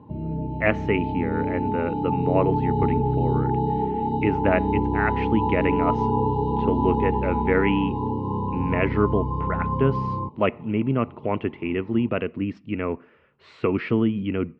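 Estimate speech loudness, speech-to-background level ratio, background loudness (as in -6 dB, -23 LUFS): -26.0 LUFS, -1.0 dB, -25.0 LUFS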